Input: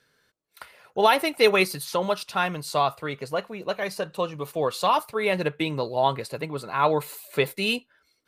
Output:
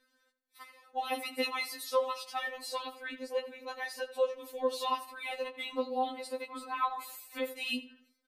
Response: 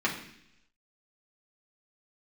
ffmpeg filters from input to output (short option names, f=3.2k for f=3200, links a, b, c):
-filter_complex "[0:a]acompressor=threshold=-23dB:ratio=2,asplit=2[a][b];[b]adelay=84,lowpass=f=3.9k:p=1,volume=-14.5dB,asplit=2[c][d];[d]adelay=84,lowpass=f=3.9k:p=1,volume=0.42,asplit=2[e][f];[f]adelay=84,lowpass=f=3.9k:p=1,volume=0.42,asplit=2[g][h];[h]adelay=84,lowpass=f=3.9k:p=1,volume=0.42[i];[c][e][g][i]amix=inputs=4:normalize=0[j];[a][j]amix=inputs=2:normalize=0,afftfilt=real='re*3.46*eq(mod(b,12),0)':imag='im*3.46*eq(mod(b,12),0)':win_size=2048:overlap=0.75,volume=-4.5dB"